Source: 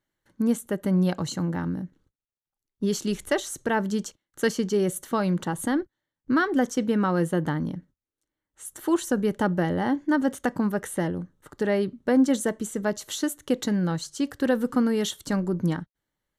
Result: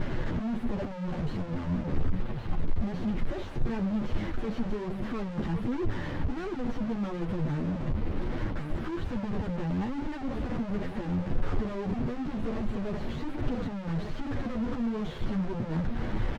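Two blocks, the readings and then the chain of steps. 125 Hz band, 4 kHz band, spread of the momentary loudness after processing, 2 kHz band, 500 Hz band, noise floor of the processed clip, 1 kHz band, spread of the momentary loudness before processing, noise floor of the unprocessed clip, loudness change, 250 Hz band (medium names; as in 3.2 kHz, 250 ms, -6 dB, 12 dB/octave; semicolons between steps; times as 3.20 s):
-1.0 dB, -10.5 dB, 4 LU, -10.0 dB, -9.5 dB, -37 dBFS, -8.5 dB, 7 LU, under -85 dBFS, -7.0 dB, -6.5 dB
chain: one-bit comparator; distance through air 380 m; delay 1114 ms -10 dB; one-sided clip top -39.5 dBFS, bottom -30 dBFS; tilt EQ -3 dB/octave; chorus voices 2, 1.3 Hz, delay 11 ms, depth 3 ms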